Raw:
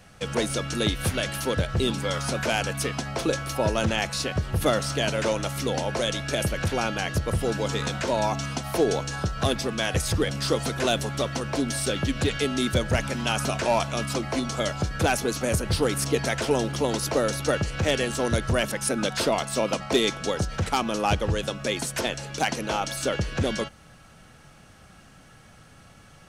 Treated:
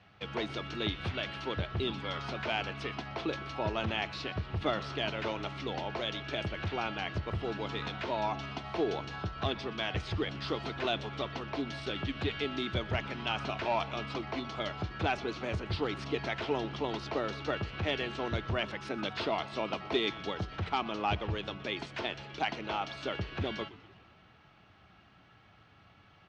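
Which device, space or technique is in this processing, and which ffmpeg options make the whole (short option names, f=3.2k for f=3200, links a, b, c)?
frequency-shifting delay pedal into a guitar cabinet: -filter_complex "[0:a]asplit=7[a][b][c][d][e][f][g];[b]adelay=122,afreqshift=-120,volume=-19dB[h];[c]adelay=244,afreqshift=-240,volume=-22.9dB[i];[d]adelay=366,afreqshift=-360,volume=-26.8dB[j];[e]adelay=488,afreqshift=-480,volume=-30.6dB[k];[f]adelay=610,afreqshift=-600,volume=-34.5dB[l];[g]adelay=732,afreqshift=-720,volume=-38.4dB[m];[a][h][i][j][k][l][m]amix=inputs=7:normalize=0,highpass=81,equalizer=f=150:t=q:w=4:g=-8,equalizer=f=240:t=q:w=4:g=-7,equalizer=f=520:t=q:w=4:g=-9,equalizer=f=1.6k:t=q:w=4:g=-4,lowpass=f=3.8k:w=0.5412,lowpass=f=3.8k:w=1.3066,volume=-5.5dB"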